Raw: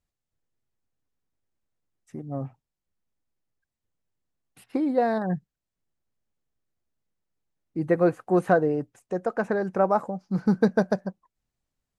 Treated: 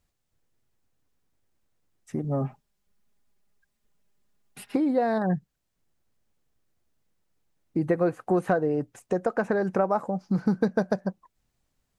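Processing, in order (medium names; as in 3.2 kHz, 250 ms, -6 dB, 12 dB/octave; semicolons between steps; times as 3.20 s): 2.24–4.76 s: comb 4.9 ms, depth 69%; compression 3:1, threshold -32 dBFS, peak gain reduction 13 dB; trim +8 dB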